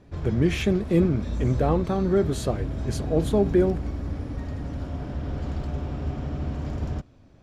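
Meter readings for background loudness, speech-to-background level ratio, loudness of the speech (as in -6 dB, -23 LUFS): -31.5 LUFS, 7.0 dB, -24.5 LUFS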